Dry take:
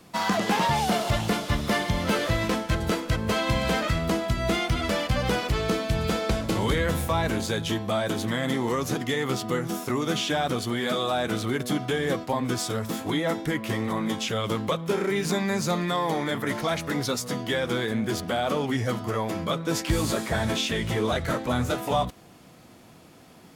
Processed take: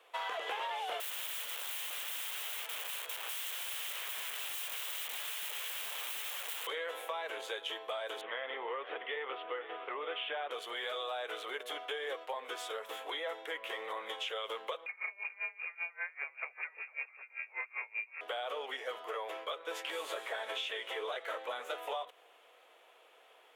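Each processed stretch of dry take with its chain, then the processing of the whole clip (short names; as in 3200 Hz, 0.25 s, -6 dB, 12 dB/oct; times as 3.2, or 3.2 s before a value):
1–6.67 compressor, threshold -24 dBFS + wrapped overs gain 29.5 dB + RIAA curve recording
8.21–10.51 steep low-pass 3100 Hz + echo 0.52 s -14.5 dB
14.86–18.21 self-modulated delay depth 0.2 ms + inverted band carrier 2600 Hz + dB-linear tremolo 5.1 Hz, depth 29 dB
whole clip: elliptic high-pass 450 Hz, stop band 80 dB; resonant high shelf 3900 Hz -6.5 dB, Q 3; compressor, threshold -28 dBFS; gain -7 dB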